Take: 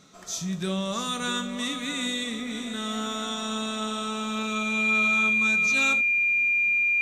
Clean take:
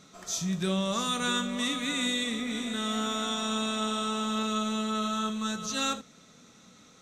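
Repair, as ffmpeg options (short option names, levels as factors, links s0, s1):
-af "bandreject=f=2400:w=30"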